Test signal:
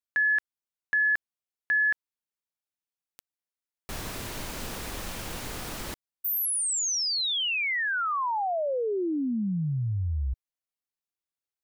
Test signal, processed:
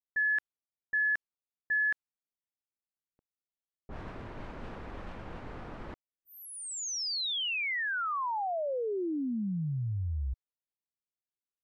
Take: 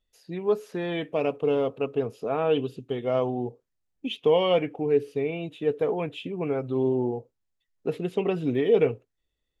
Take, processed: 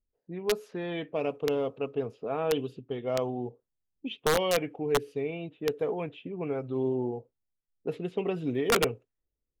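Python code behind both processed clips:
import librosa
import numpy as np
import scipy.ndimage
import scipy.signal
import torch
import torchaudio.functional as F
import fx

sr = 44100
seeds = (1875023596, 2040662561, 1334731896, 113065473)

y = (np.mod(10.0 ** (13.0 / 20.0) * x + 1.0, 2.0) - 1.0) / 10.0 ** (13.0 / 20.0)
y = fx.env_lowpass(y, sr, base_hz=440.0, full_db=-23.0)
y = y * 10.0 ** (-4.5 / 20.0)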